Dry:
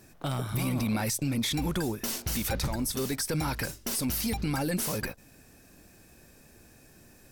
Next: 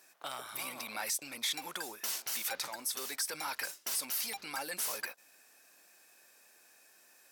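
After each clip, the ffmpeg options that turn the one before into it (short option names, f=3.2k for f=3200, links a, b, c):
-af "highpass=820,volume=-2.5dB"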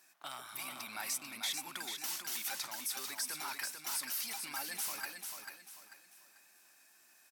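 -filter_complex "[0:a]equalizer=f=490:w=3:g=-12.5,asplit=2[a][b];[b]aecho=0:1:442|884|1326|1768:0.501|0.17|0.0579|0.0197[c];[a][c]amix=inputs=2:normalize=0,volume=-3dB"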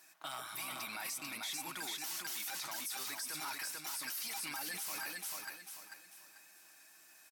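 -af "aecho=1:1:6.3:0.38,alimiter=level_in=11dB:limit=-24dB:level=0:latency=1:release=16,volume=-11dB,volume=3dB"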